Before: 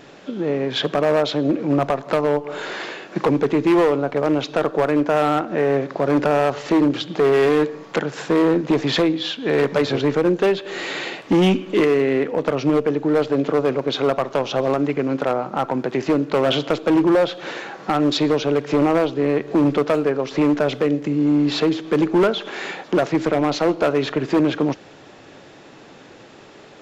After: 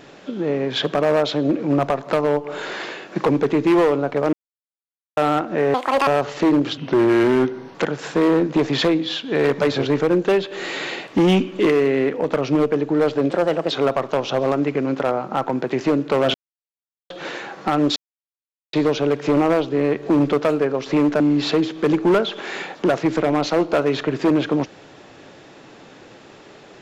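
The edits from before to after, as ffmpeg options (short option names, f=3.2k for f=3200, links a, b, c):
-filter_complex "[0:a]asplit=13[a][b][c][d][e][f][g][h][i][j][k][l][m];[a]atrim=end=4.33,asetpts=PTS-STARTPTS,afade=t=out:st=4.326:d=0.004:c=hsin[n];[b]atrim=start=4.33:end=5.17,asetpts=PTS-STARTPTS,volume=0[o];[c]atrim=start=5.17:end=5.744,asetpts=PTS-STARTPTS,afade=t=in:d=0.004:c=hsin[p];[d]atrim=start=5.74:end=6.36,asetpts=PTS-STARTPTS,asetrate=82467,aresample=44100,atrim=end_sample=14621,asetpts=PTS-STARTPTS[q];[e]atrim=start=6.356:end=7.064[r];[f]atrim=start=7.06:end=7.89,asetpts=PTS-STARTPTS,asetrate=37485,aresample=44100,atrim=end_sample=43062,asetpts=PTS-STARTPTS[s];[g]atrim=start=7.886:end=13.454[t];[h]atrim=start=13.45:end=13.93,asetpts=PTS-STARTPTS,asetrate=52479,aresample=44100,atrim=end_sample=17788,asetpts=PTS-STARTPTS[u];[i]atrim=start=13.926:end=16.56,asetpts=PTS-STARTPTS,afade=t=out:st=2.63:d=0.004:c=hsin[v];[j]atrim=start=16.56:end=17.32,asetpts=PTS-STARTPTS,volume=0[w];[k]atrim=start=17.32:end=18.18,asetpts=PTS-STARTPTS,afade=t=in:d=0.004:c=hsin,afade=t=out:st=0.856:d=0.004:c=hsin,apad=pad_dur=0.77[x];[l]atrim=start=18.18:end=20.652,asetpts=PTS-STARTPTS,afade=t=in:d=0.004:c=hsin[y];[m]atrim=start=21.288[z];[n][o][p]concat=n=3:v=0:a=1[aa];[aa][q]acrossfade=d=0.004:c1=hsin:c2=hsin[ab];[ab][r]acrossfade=d=0.004:c1=hsin:c2=hsin[ac];[ac][s]acrossfade=d=0.004:c1=hsin:c2=hsin[ad];[ad][t]acrossfade=d=0.004:c1=hsin:c2=hsin[ae];[ae][u]acrossfade=d=0.004:c1=hsin:c2=hsin[af];[v][w][x][y]concat=n=4:v=0:a=1[ag];[af][ag]acrossfade=d=0.004:c1=hsin:c2=hsin[ah];[ah][z]acrossfade=d=0.004:c1=hsin:c2=hsin"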